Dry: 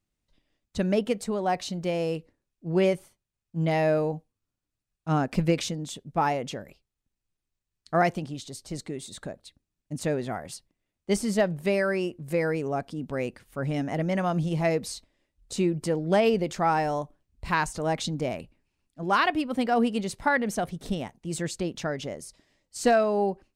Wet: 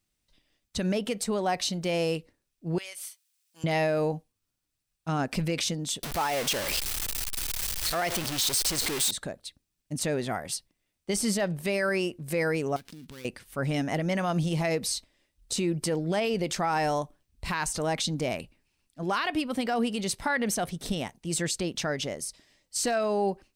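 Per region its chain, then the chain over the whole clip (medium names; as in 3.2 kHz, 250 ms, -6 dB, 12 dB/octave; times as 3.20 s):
2.78–3.64 s: high-pass 1.1 kHz + treble shelf 2.4 kHz +11.5 dB + compression 10:1, threshold -42 dBFS
6.03–9.11 s: jump at every zero crossing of -27.5 dBFS + peaking EQ 170 Hz -8.5 dB 2 oct
12.76–13.25 s: dead-time distortion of 0.15 ms + peaking EQ 680 Hz -13.5 dB + compression 8:1, threshold -42 dBFS
whole clip: treble shelf 2 kHz +9 dB; band-stop 6.9 kHz, Q 19; peak limiter -18.5 dBFS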